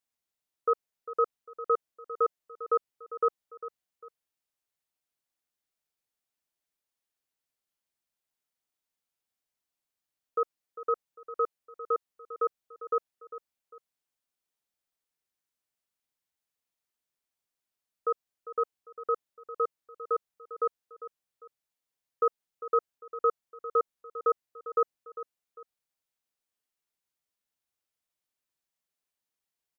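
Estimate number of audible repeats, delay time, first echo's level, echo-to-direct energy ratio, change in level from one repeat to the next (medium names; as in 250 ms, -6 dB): 2, 400 ms, -14.0 dB, -13.5 dB, -9.0 dB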